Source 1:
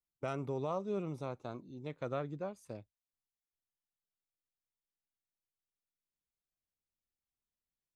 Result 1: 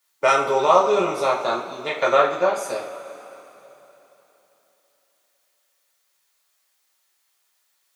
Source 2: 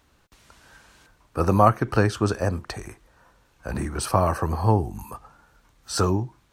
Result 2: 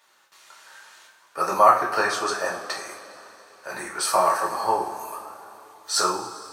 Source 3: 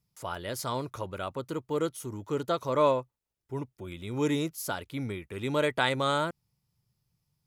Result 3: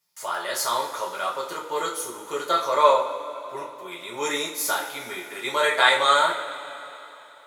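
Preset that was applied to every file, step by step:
high-pass filter 720 Hz 12 dB per octave
dynamic equaliser 2,900 Hz, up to −5 dB, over −59 dBFS, Q 6.7
coupled-rooms reverb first 0.4 s, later 3.5 s, from −18 dB, DRR −4 dB
normalise the peak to −2 dBFS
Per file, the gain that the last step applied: +21.5, +0.5, +6.0 decibels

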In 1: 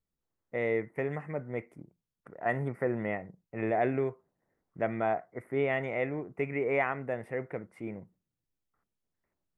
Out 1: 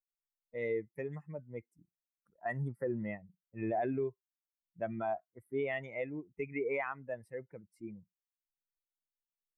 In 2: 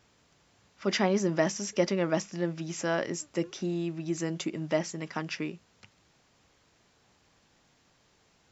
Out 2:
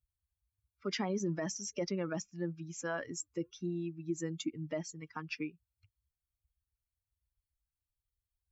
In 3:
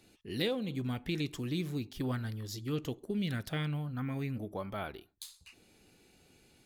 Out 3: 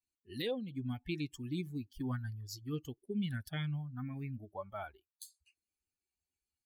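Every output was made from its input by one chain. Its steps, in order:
spectral dynamics exaggerated over time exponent 2
brickwall limiter −26 dBFS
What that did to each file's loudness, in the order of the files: −6.0, −8.0, −4.0 LU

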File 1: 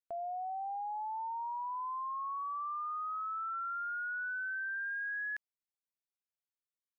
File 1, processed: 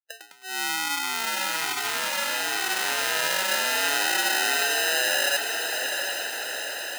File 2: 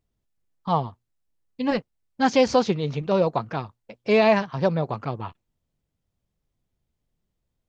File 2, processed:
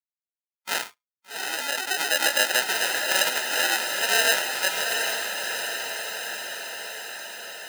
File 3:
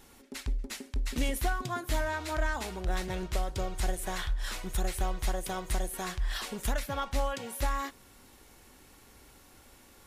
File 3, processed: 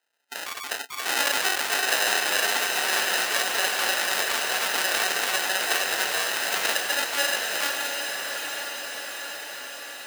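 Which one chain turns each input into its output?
noise reduction from a noise print of the clip's start 29 dB
parametric band 11,000 Hz +4.5 dB 1.7 octaves
delay with pitch and tempo change per echo 119 ms, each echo +3 semitones, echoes 3
decimation without filtering 39×
high-pass filter 1,300 Hz 12 dB per octave
on a send: feedback delay with all-pass diffusion 772 ms, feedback 67%, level −5 dB
on the sum: loudness normalisation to −24 LKFS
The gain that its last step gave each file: +19.0, +3.5, +16.0 decibels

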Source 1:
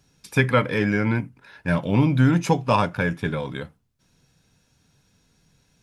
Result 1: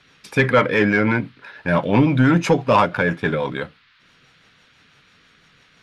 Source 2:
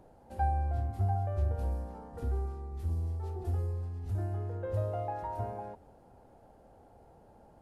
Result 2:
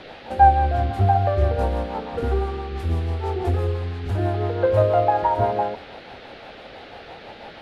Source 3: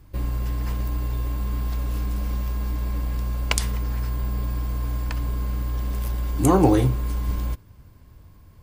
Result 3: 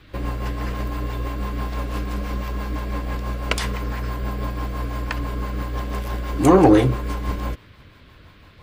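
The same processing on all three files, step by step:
rotating-speaker cabinet horn 6 Hz
noise in a band 1,200–4,300 Hz −66 dBFS
mid-hump overdrive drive 16 dB, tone 1,600 Hz, clips at −5 dBFS
normalise the peak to −3 dBFS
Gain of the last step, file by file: +4.0, +14.0, +4.0 decibels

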